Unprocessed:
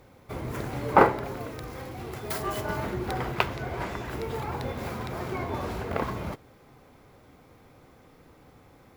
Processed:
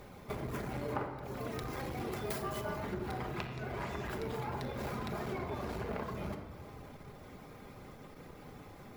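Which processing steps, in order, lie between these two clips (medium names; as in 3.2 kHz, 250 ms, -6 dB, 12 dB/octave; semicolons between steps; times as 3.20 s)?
reverb removal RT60 0.53 s; compression 16:1, threshold -39 dBFS, peak gain reduction 27 dB; simulated room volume 2100 m³, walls mixed, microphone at 1.3 m; transformer saturation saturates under 700 Hz; trim +3.5 dB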